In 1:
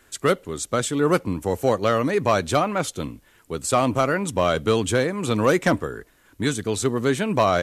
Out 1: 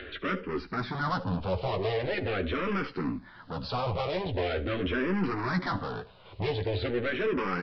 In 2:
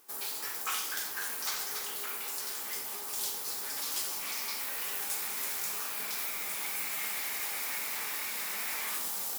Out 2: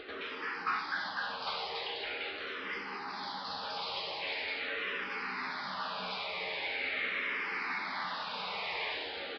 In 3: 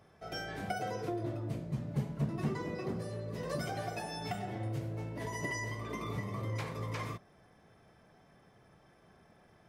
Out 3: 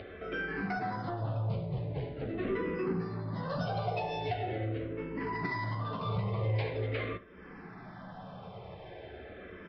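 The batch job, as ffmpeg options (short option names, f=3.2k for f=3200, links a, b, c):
-filter_complex "[0:a]afftfilt=real='re*lt(hypot(re,im),0.562)':imag='im*lt(hypot(re,im),0.562)':win_size=1024:overlap=0.75,lowpass=f=4.3k:w=0.5412,lowpass=f=4.3k:w=1.3066,acrossover=split=2500[a][b];[b]acompressor=threshold=-44dB:ratio=4:attack=1:release=60[c];[a][c]amix=inputs=2:normalize=0,equalizer=f=480:w=2.8:g=3.5,alimiter=limit=-18dB:level=0:latency=1:release=12,acompressor=mode=upward:threshold=-42dB:ratio=2.5,aresample=11025,asoftclip=type=tanh:threshold=-33.5dB,aresample=44100,asplit=2[d][e];[e]adelay=16,volume=-13dB[f];[d][f]amix=inputs=2:normalize=0,asplit=2[g][h];[h]aecho=0:1:11|75:0.398|0.126[i];[g][i]amix=inputs=2:normalize=0,asplit=2[j][k];[k]afreqshift=-0.43[l];[j][l]amix=inputs=2:normalize=1,volume=8dB"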